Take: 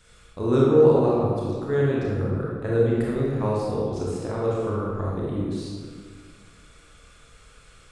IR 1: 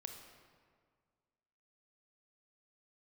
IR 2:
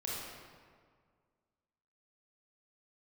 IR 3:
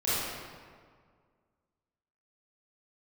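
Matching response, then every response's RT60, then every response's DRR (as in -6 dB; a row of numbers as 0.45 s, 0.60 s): 2; 1.9 s, 1.9 s, 1.9 s; 4.0 dB, -6.0 dB, -12.5 dB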